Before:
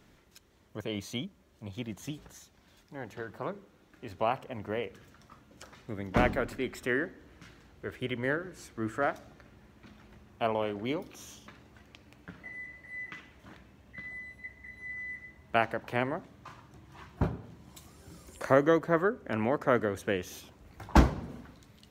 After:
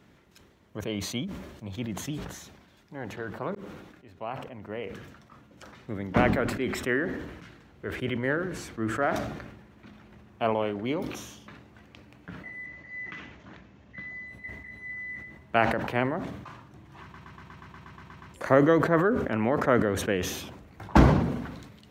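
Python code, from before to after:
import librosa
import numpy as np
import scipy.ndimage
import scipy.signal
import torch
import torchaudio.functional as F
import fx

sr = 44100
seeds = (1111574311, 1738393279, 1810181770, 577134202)

y = fx.resample_bad(x, sr, factor=3, down='none', up='filtered', at=(12.66, 14.28))
y = fx.edit(y, sr, fx.fade_in_span(start_s=3.55, length_s=2.22),
    fx.stutter_over(start_s=17.02, slice_s=0.12, count=11), tone=tone)
y = fx.highpass(y, sr, hz=150.0, slope=6)
y = fx.bass_treble(y, sr, bass_db=5, treble_db=-6)
y = fx.sustainer(y, sr, db_per_s=49.0)
y = y * 10.0 ** (2.5 / 20.0)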